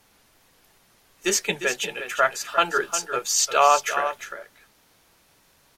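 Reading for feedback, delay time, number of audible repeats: no regular repeats, 352 ms, 1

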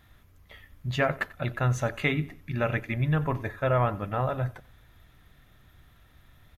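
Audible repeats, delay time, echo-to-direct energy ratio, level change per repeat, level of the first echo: 2, 91 ms, -20.0 dB, -9.5 dB, -20.5 dB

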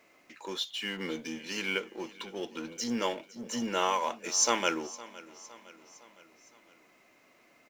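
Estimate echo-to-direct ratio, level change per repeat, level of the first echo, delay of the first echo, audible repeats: -17.5 dB, -5.5 dB, -19.0 dB, 511 ms, 3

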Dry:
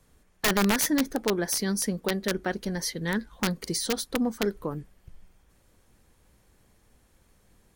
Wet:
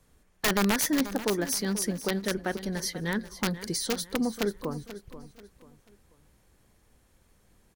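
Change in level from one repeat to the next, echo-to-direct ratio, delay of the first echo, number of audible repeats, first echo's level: -9.0 dB, -13.5 dB, 486 ms, 3, -14.0 dB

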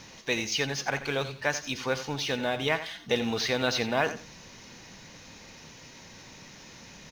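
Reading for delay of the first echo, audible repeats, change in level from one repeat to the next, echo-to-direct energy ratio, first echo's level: 86 ms, 2, -14.5 dB, -12.5 dB, -12.5 dB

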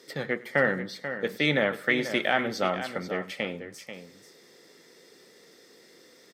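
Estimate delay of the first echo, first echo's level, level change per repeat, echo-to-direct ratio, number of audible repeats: 102 ms, -21.5 dB, no regular repeats, -10.0 dB, 4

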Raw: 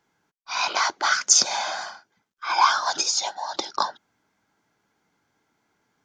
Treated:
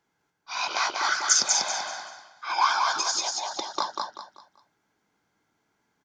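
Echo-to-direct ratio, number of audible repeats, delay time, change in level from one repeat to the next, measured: -2.5 dB, 4, 193 ms, -10.0 dB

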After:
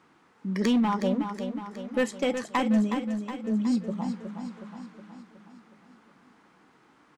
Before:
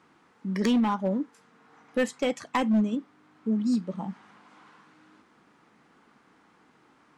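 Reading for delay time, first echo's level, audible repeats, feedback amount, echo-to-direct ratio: 367 ms, -8.0 dB, 6, 56%, -6.5 dB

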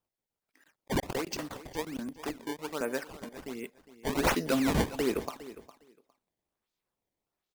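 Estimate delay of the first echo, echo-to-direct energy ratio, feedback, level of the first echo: 408 ms, -16.0 dB, 16%, -16.0 dB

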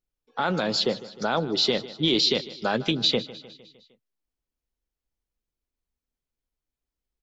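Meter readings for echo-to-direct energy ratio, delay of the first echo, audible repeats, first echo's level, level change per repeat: -16.0 dB, 153 ms, 4, -17.5 dB, -5.0 dB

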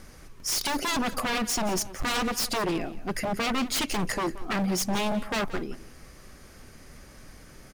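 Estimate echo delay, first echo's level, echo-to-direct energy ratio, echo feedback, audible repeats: 176 ms, -16.5 dB, -16.5 dB, no regular repeats, 1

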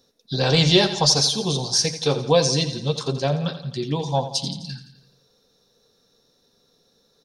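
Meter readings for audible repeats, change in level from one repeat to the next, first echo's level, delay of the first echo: 5, -5.0 dB, -12.0 dB, 85 ms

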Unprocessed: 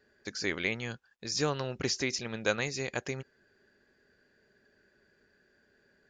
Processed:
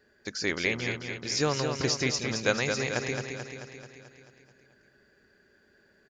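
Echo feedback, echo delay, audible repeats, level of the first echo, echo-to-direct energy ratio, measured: 60%, 218 ms, 7, -6.0 dB, -4.0 dB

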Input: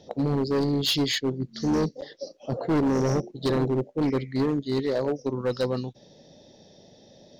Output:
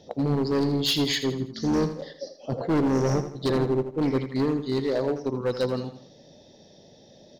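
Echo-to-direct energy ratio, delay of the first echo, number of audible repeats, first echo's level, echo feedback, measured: -10.0 dB, 82 ms, 4, -11.0 dB, 41%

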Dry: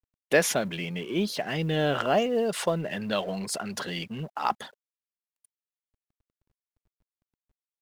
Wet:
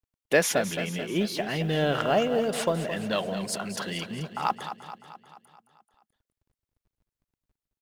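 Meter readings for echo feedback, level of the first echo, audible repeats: 57%, -10.5 dB, 6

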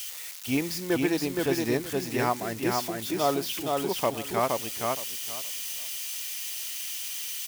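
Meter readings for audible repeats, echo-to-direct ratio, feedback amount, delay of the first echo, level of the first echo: 3, -3.0 dB, 20%, 469 ms, -3.0 dB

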